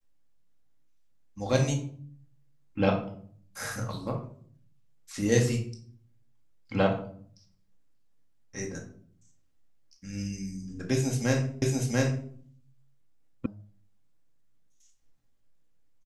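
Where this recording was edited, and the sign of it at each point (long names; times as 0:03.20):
0:11.62: the same again, the last 0.69 s
0:13.46: cut off before it has died away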